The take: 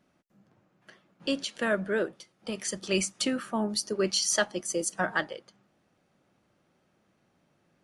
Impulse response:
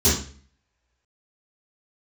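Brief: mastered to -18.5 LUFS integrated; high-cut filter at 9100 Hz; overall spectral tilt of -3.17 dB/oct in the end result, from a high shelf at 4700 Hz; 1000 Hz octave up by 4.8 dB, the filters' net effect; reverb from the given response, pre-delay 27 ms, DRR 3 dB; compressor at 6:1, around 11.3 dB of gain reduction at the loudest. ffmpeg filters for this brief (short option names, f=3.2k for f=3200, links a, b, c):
-filter_complex "[0:a]lowpass=9.1k,equalizer=f=1k:t=o:g=6,highshelf=f=4.7k:g=7,acompressor=threshold=-32dB:ratio=6,asplit=2[a][b];[1:a]atrim=start_sample=2205,adelay=27[c];[b][c]afir=irnorm=-1:irlink=0,volume=-20dB[d];[a][d]amix=inputs=2:normalize=0,volume=12.5dB"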